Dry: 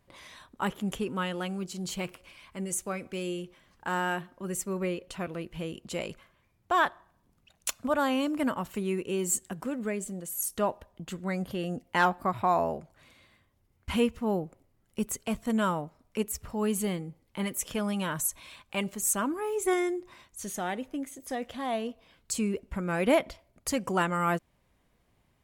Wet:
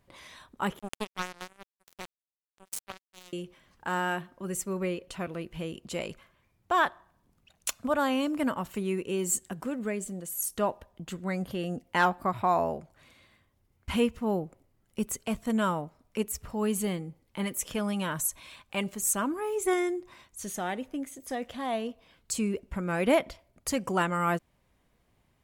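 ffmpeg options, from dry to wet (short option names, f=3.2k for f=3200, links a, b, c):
-filter_complex "[0:a]asettb=1/sr,asplit=3[a][b][c];[a]atrim=end=0.794[d];[b]atrim=start=0.79:end=3.33,asetpts=PTS-STARTPTS,afade=t=in:d=0.004:c=qsin,afade=t=out:st=2.536:d=0.004:c=qsin,acrusher=bits=3:mix=0:aa=0.5[e];[c]atrim=start=3.326[f];[d][e]acrossfade=d=0.004:c1=hsin:c2=qsin[g];[g][f]acrossfade=d=0.004:c1=qsin:c2=hsin"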